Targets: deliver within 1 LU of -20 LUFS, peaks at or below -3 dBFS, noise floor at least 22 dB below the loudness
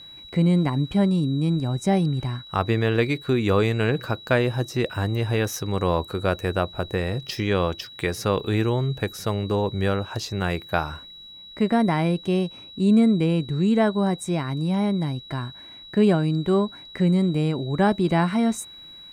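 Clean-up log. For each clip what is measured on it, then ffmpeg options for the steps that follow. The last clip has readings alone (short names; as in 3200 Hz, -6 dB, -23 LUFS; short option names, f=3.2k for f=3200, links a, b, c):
steady tone 3900 Hz; tone level -41 dBFS; loudness -23.5 LUFS; peak -7.5 dBFS; loudness target -20.0 LUFS
-> -af "bandreject=f=3.9k:w=30"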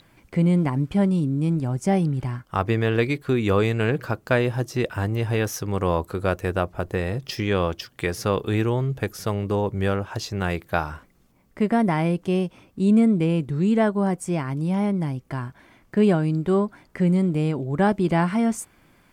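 steady tone none; loudness -23.5 LUFS; peak -7.5 dBFS; loudness target -20.0 LUFS
-> -af "volume=3.5dB"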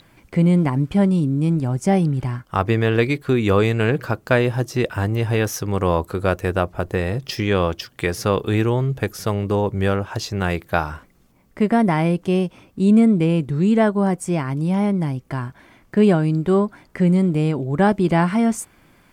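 loudness -20.0 LUFS; peak -4.0 dBFS; noise floor -55 dBFS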